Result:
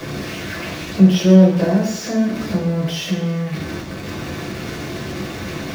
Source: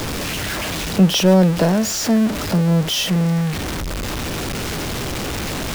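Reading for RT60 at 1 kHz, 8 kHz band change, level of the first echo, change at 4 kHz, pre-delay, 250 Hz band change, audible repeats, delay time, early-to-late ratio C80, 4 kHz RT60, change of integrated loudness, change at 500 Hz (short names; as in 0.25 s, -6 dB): 0.80 s, -8.5 dB, none, -6.5 dB, 3 ms, +1.5 dB, none, none, 9.0 dB, 0.85 s, 0.0 dB, 0.0 dB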